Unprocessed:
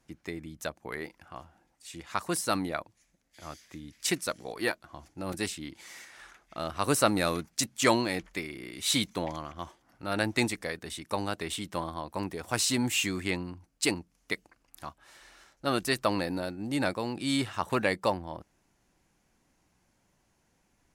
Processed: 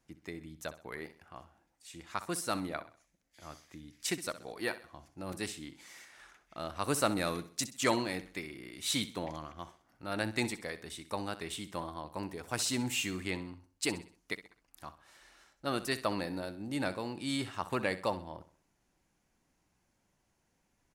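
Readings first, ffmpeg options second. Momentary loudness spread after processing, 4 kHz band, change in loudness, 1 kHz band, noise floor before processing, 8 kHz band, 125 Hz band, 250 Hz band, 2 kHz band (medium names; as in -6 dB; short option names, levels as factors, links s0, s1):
19 LU, -5.5 dB, -5.5 dB, -5.5 dB, -72 dBFS, -5.5 dB, -5.5 dB, -5.5 dB, -5.5 dB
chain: -af "aecho=1:1:64|128|192|256:0.188|0.0735|0.0287|0.0112,volume=0.531"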